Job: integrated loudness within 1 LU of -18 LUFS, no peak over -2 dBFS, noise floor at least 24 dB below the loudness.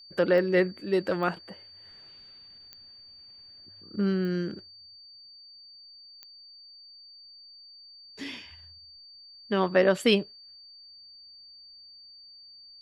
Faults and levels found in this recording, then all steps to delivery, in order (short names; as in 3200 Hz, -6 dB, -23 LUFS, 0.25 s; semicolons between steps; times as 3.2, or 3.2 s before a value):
clicks 5; steady tone 4600 Hz; tone level -48 dBFS; loudness -26.5 LUFS; peak -9.0 dBFS; loudness target -18.0 LUFS
-> de-click; notch 4600 Hz, Q 30; gain +8.5 dB; limiter -2 dBFS